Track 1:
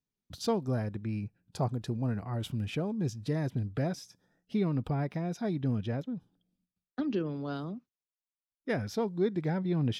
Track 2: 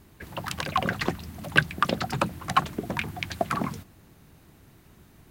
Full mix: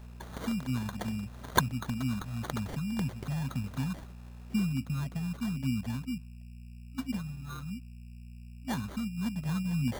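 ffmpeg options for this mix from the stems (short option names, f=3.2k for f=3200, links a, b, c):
-filter_complex "[0:a]highpass=140,highshelf=f=7k:g=-8.5,aeval=exprs='val(0)+0.00447*(sin(2*PI*60*n/s)+sin(2*PI*2*60*n/s)/2+sin(2*PI*3*60*n/s)/3+sin(2*PI*4*60*n/s)/4+sin(2*PI*5*60*n/s)/5)':c=same,volume=2dB,asplit=2[a][b];[1:a]tiltshelf=f=970:g=-8.5,volume=-4.5dB[c];[b]apad=whole_len=233825[d];[c][d]sidechaincompress=threshold=-44dB:ratio=8:attack=42:release=256[e];[a][e]amix=inputs=2:normalize=0,afftfilt=real='re*(1-between(b*sr/4096,270,1300))':imag='im*(1-between(b*sr/4096,270,1300))':win_size=4096:overlap=0.75,acrusher=samples=17:mix=1:aa=0.000001"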